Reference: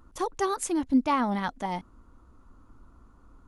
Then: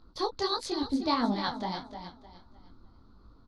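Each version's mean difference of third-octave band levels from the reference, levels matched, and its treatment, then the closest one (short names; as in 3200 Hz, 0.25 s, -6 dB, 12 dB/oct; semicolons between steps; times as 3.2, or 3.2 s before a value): 5.5 dB: harmonic-percussive split percussive +5 dB; EQ curve 370 Hz 0 dB, 2800 Hz -6 dB, 4300 Hz +15 dB, 7300 Hz -17 dB; feedback echo 0.305 s, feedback 34%, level -10 dB; detuned doubles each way 53 cents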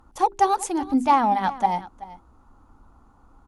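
3.5 dB: bell 810 Hz +13.5 dB 0.29 oct; notches 50/100/150/200/250/300/350/400 Hz; added harmonics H 7 -35 dB, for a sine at -9.5 dBFS; echo 0.381 s -17.5 dB; gain +2.5 dB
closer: second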